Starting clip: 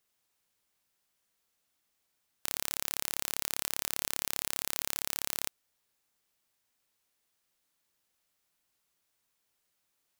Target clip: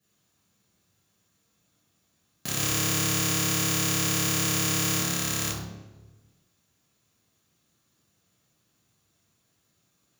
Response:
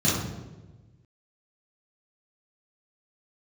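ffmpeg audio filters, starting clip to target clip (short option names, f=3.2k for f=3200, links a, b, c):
-filter_complex "[0:a]asettb=1/sr,asplit=3[a][b][c];[a]atrim=end=2.544[d];[b]atrim=start=2.54:end=4.97,asetpts=PTS-STARTPTS,afade=t=in:d=0.004:c=qsin,afade=t=out:st=2.426:d=0.004:c=qsin,aecho=1:1:6.5:0.95,atrim=end_sample=107163[e];[c]atrim=start=4.966[f];[d][e]acrossfade=d=0.004:c1=hsin:c2=qsin[g];[g][f]acrossfade=d=0.004:c1=qsin:c2=hsin[h];[1:a]atrim=start_sample=2205[i];[h][i]afir=irnorm=-1:irlink=0,volume=-5dB"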